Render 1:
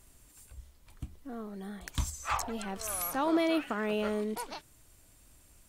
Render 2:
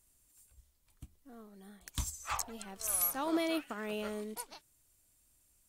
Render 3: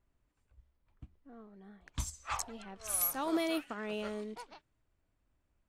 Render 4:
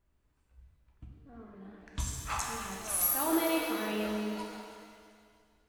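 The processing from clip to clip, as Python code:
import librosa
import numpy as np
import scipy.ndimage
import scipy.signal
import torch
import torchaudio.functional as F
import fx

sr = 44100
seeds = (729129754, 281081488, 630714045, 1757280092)

y1 = fx.high_shelf(x, sr, hz=4600.0, db=10.5)
y1 = fx.upward_expand(y1, sr, threshold_db=-47.0, expansion=1.5)
y1 = y1 * 10.0 ** (-4.0 / 20.0)
y2 = fx.env_lowpass(y1, sr, base_hz=1700.0, full_db=-30.0)
y3 = fx.echo_feedback(y2, sr, ms=321, feedback_pct=39, wet_db=-15.0)
y3 = fx.rev_shimmer(y3, sr, seeds[0], rt60_s=1.7, semitones=7, shimmer_db=-8, drr_db=-1.0)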